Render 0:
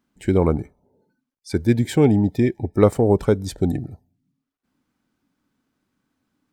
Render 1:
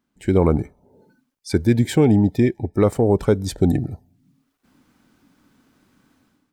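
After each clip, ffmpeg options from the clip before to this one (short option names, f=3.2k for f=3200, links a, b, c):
-af "dynaudnorm=f=110:g=7:m=16dB,alimiter=level_in=3.5dB:limit=-1dB:release=50:level=0:latency=1,volume=-5.5dB"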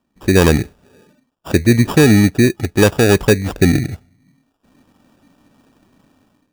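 -af "acrusher=samples=21:mix=1:aa=0.000001,volume=5dB"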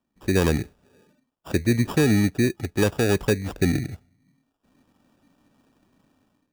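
-filter_complex "[0:a]acrossover=split=430[a][b];[b]acompressor=threshold=-11dB:ratio=6[c];[a][c]amix=inputs=2:normalize=0,volume=-9dB"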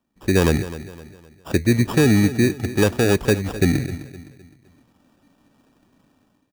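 -af "aecho=1:1:257|514|771|1028:0.178|0.0711|0.0285|0.0114,volume=3.5dB"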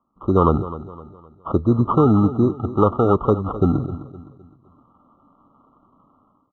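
-af "lowpass=f=1.2k:t=q:w=6.7,afftfilt=real='re*eq(mod(floor(b*sr/1024/1400),2),0)':imag='im*eq(mod(floor(b*sr/1024/1400),2),0)':win_size=1024:overlap=0.75"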